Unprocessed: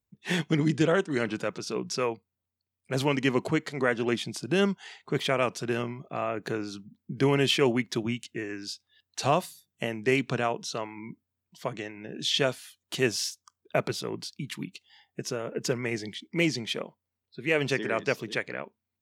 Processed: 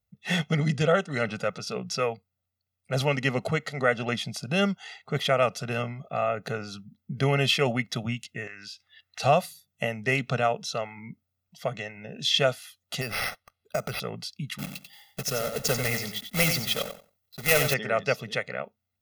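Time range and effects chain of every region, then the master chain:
8.47–9.20 s: peaking EQ 1.9 kHz +13.5 dB 1.6 oct + compression 3:1, threshold -42 dBFS
13.01–14.00 s: compression, threshold -26 dBFS + careless resampling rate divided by 6×, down none, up hold
14.58–17.74 s: block-companded coder 3-bit + treble shelf 7 kHz +8.5 dB + feedback delay 91 ms, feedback 17%, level -8 dB
whole clip: peaking EQ 7.8 kHz -5.5 dB 0.31 oct; comb 1.5 ms, depth 86%

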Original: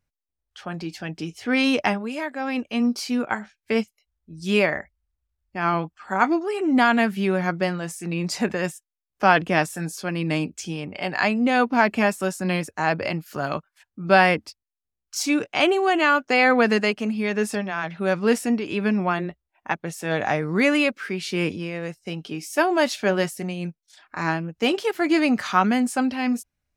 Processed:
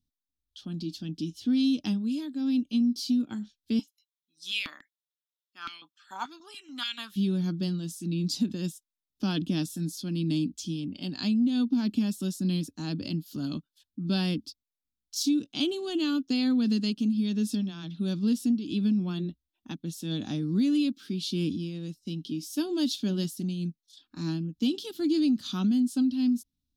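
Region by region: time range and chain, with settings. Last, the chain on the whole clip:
3.79–7.16 s: band-stop 4.6 kHz, Q 11 + step-sequenced high-pass 6.9 Hz 890–2200 Hz
whole clip: FFT filter 140 Hz 0 dB, 280 Hz +9 dB, 420 Hz -12 dB, 660 Hz -21 dB, 1.4 kHz -18 dB, 2.1 kHz -24 dB, 3.5 kHz +6 dB, 8.2 kHz -4 dB, 12 kHz +1 dB; compression, threshold -18 dBFS; trim -4 dB

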